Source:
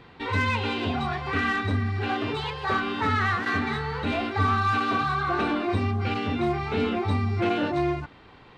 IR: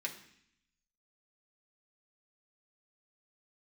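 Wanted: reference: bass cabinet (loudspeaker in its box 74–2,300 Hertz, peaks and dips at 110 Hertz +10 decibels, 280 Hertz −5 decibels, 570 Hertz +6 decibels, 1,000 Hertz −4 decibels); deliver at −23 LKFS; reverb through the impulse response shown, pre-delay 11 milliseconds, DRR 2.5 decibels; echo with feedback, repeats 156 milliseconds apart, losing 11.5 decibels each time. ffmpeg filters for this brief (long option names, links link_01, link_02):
-filter_complex "[0:a]aecho=1:1:156|312|468:0.266|0.0718|0.0194,asplit=2[link_01][link_02];[1:a]atrim=start_sample=2205,adelay=11[link_03];[link_02][link_03]afir=irnorm=-1:irlink=0,volume=-3.5dB[link_04];[link_01][link_04]amix=inputs=2:normalize=0,highpass=frequency=74:width=0.5412,highpass=frequency=74:width=1.3066,equalizer=frequency=110:width_type=q:width=4:gain=10,equalizer=frequency=280:width_type=q:width=4:gain=-5,equalizer=frequency=570:width_type=q:width=4:gain=6,equalizer=frequency=1000:width_type=q:width=4:gain=-4,lowpass=frequency=2300:width=0.5412,lowpass=frequency=2300:width=1.3066,volume=1dB"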